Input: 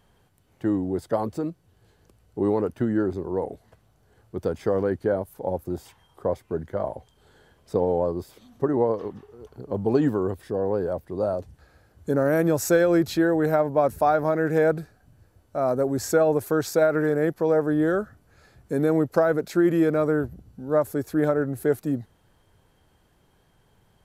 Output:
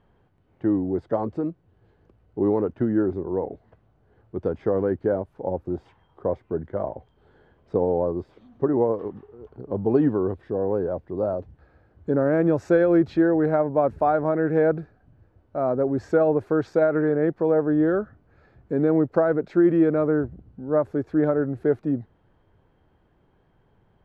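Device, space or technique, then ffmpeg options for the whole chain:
phone in a pocket: -af "lowpass=3k,equalizer=f=330:t=o:w=0.77:g=2.5,highshelf=f=2.4k:g=-9"

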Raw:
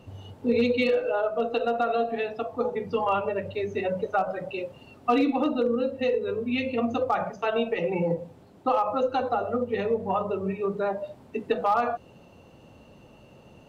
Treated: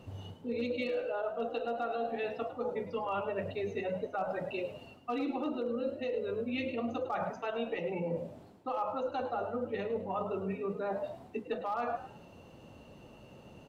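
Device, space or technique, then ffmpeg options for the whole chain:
compression on the reversed sound: -filter_complex "[0:a]areverse,acompressor=threshold=-30dB:ratio=6,areverse,asplit=4[a][b][c][d];[b]adelay=105,afreqshift=70,volume=-13dB[e];[c]adelay=210,afreqshift=140,volume=-23.2dB[f];[d]adelay=315,afreqshift=210,volume=-33.3dB[g];[a][e][f][g]amix=inputs=4:normalize=0,volume=-2dB"

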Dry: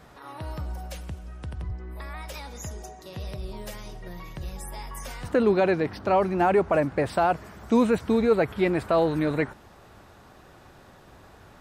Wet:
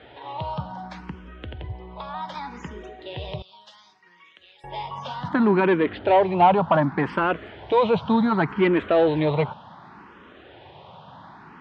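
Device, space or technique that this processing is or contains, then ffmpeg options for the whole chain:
barber-pole phaser into a guitar amplifier: -filter_complex "[0:a]asplit=2[a][b];[b]afreqshift=0.67[c];[a][c]amix=inputs=2:normalize=1,asoftclip=type=tanh:threshold=-18.5dB,highpass=110,equalizer=f=160:t=q:w=4:g=4,equalizer=f=940:t=q:w=4:g=8,equalizer=f=3.2k:t=q:w=4:g=8,lowpass=f=3.8k:w=0.5412,lowpass=f=3.8k:w=1.3066,asettb=1/sr,asplit=3[d][e][f];[d]atrim=end=3.424[g];[e]atrim=start=3.42:end=4.64,asetpts=PTS-STARTPTS,afade=t=in:d=0.004:c=qsin,afade=t=out:st=1.216:d=0.004:c=qsin,aderivative[h];[f]atrim=start=4.636[i];[g][h]acrossfade=d=0.004:c1=hsin:c2=qsin[j];[j][i]acrossfade=d=0.004:c1=qsin:c2=hsin,volume=7dB"

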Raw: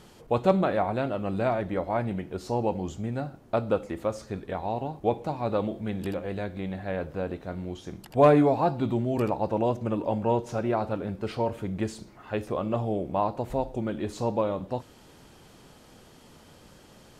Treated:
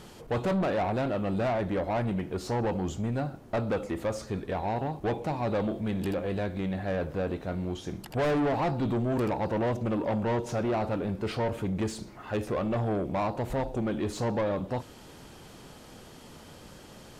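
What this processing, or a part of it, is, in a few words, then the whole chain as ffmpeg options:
saturation between pre-emphasis and de-emphasis: -af "highshelf=f=3.3k:g=9,asoftclip=type=tanh:threshold=-28dB,highshelf=f=3.3k:g=-9,volume=4dB"

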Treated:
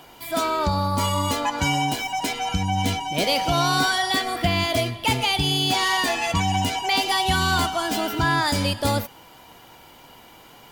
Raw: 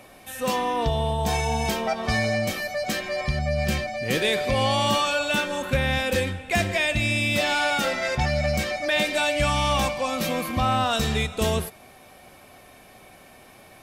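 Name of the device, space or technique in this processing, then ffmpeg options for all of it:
nightcore: -af "asetrate=56889,aresample=44100,volume=1.5dB"

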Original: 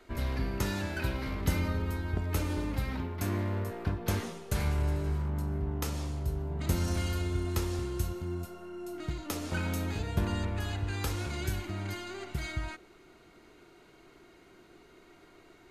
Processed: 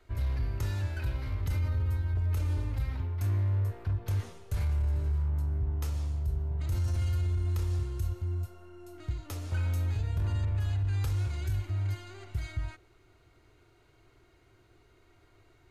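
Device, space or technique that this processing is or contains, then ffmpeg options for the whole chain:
car stereo with a boomy subwoofer: -af "lowshelf=f=140:t=q:w=3:g=8.5,alimiter=limit=-16.5dB:level=0:latency=1:release=10,volume=-7dB"

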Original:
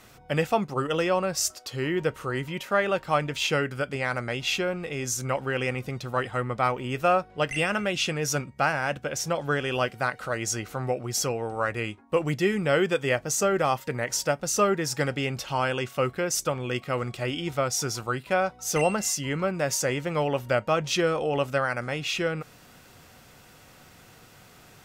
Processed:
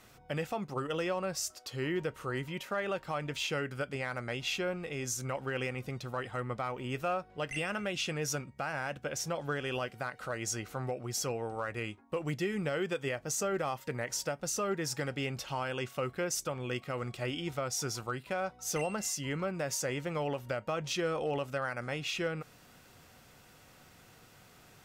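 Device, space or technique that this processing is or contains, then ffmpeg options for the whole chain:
limiter into clipper: -af "alimiter=limit=-18dB:level=0:latency=1:release=136,asoftclip=type=hard:threshold=-19dB,volume=-6dB"

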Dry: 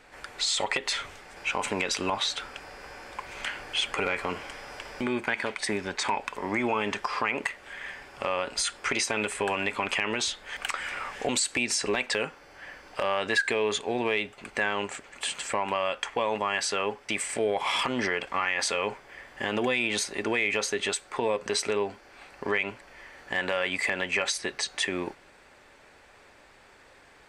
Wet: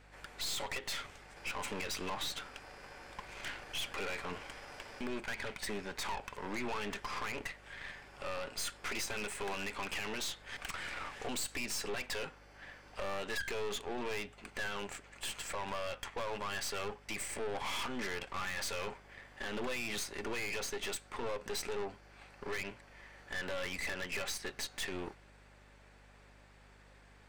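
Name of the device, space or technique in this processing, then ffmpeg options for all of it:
valve amplifier with mains hum: -af "aeval=exprs='(tanh(39.8*val(0)+0.8)-tanh(0.8))/39.8':c=same,aeval=exprs='val(0)+0.00126*(sin(2*PI*50*n/s)+sin(2*PI*2*50*n/s)/2+sin(2*PI*3*50*n/s)/3+sin(2*PI*4*50*n/s)/4+sin(2*PI*5*50*n/s)/5)':c=same,volume=-3dB"

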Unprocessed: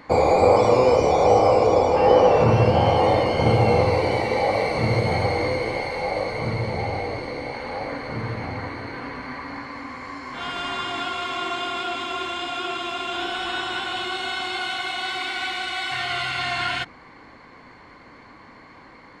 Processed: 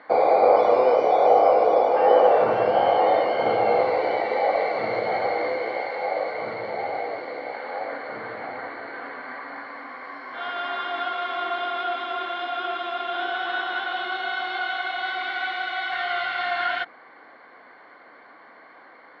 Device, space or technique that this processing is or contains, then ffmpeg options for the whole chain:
phone earpiece: -af "highpass=460,equalizer=f=690:t=q:w=4:g=5,equalizer=f=980:t=q:w=4:g=-5,equalizer=f=1.5k:t=q:w=4:g=4,equalizer=f=2.6k:t=q:w=4:g=-10,lowpass=f=3.5k:w=0.5412,lowpass=f=3.5k:w=1.3066"

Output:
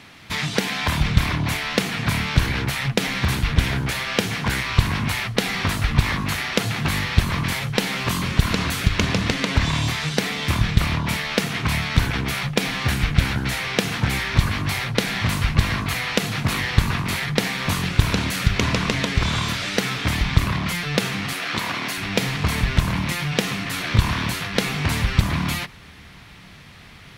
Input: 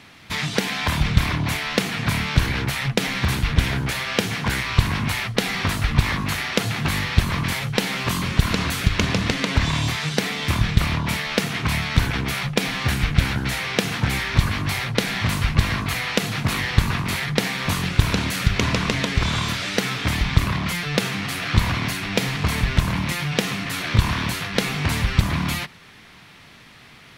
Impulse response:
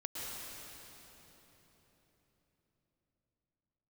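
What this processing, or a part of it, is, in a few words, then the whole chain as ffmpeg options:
ducked reverb: -filter_complex "[0:a]asplit=3[a][b][c];[1:a]atrim=start_sample=2205[d];[b][d]afir=irnorm=-1:irlink=0[e];[c]apad=whole_len=1198388[f];[e][f]sidechaincompress=threshold=-41dB:ratio=3:attack=16:release=1250,volume=-9.5dB[g];[a][g]amix=inputs=2:normalize=0,asettb=1/sr,asplit=3[h][i][j];[h]atrim=end=21.334[k];[i]atrim=start=21.33:end=21.98,asetpts=PTS-STARTPTS,afade=t=in:d=0.004:c=qsin,afade=t=out:st=0.646:d=0.004:c=qsin,highpass=270[l];[j]atrim=start=21.976[m];[k][l]acrossfade=d=0.004:c1=hsin:c2=qsin[n];[n][m]acrossfade=d=0.004:c1=qsin:c2=hsin"

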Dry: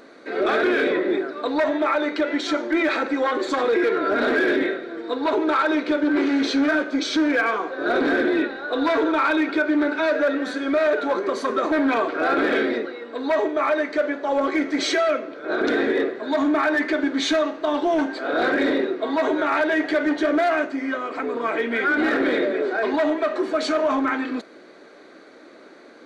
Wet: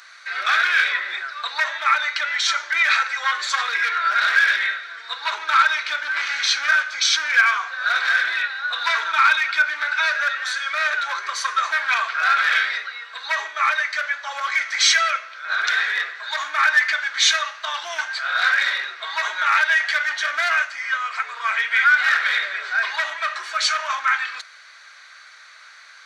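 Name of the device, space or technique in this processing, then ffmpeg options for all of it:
headphones lying on a table: -af "highpass=f=1.3k:w=0.5412,highpass=f=1.3k:w=1.3066,equalizer=f=5.8k:t=o:w=0.44:g=5.5,volume=8.5dB"

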